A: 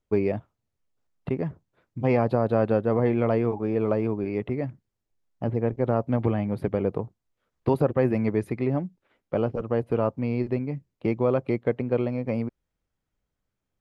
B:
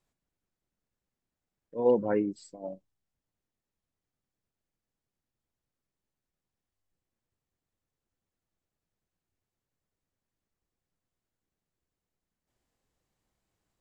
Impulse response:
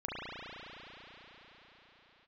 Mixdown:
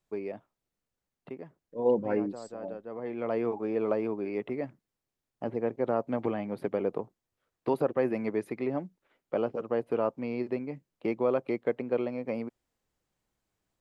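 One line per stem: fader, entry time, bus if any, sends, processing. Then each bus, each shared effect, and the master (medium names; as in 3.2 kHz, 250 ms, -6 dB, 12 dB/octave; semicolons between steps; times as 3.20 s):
-11.5 dB, 0.00 s, no send, high-pass 260 Hz 12 dB/octave; level rider gain up to 9 dB; auto duck -15 dB, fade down 0.95 s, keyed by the second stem
-1.5 dB, 0.00 s, no send, none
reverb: none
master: none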